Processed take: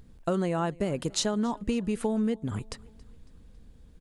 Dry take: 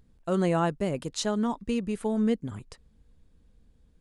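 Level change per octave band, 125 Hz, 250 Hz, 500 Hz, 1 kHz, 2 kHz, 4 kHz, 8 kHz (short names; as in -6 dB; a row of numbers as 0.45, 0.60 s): -0.5, -1.0, -1.5, -2.0, -1.5, +2.5, +3.5 dB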